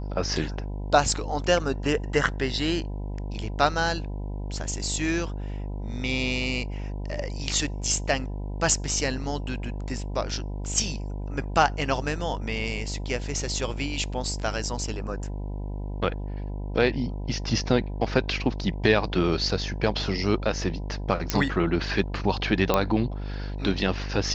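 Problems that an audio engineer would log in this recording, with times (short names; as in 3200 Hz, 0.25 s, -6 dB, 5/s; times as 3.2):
buzz 50 Hz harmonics 20 -32 dBFS
21.3 pop -7 dBFS
22.74 pop -7 dBFS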